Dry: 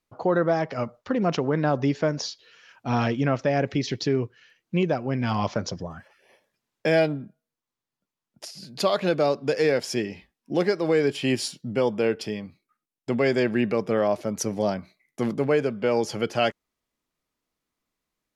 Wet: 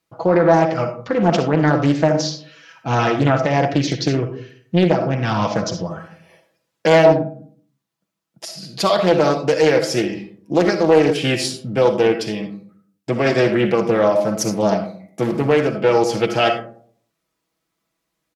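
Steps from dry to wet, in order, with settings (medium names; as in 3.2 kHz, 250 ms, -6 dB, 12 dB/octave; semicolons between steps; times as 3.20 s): high-pass 48 Hz 24 dB/octave; comb 6.1 ms, depth 56%; algorithmic reverb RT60 0.56 s, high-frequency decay 0.35×, pre-delay 20 ms, DRR 6 dB; loudspeaker Doppler distortion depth 0.41 ms; trim +5.5 dB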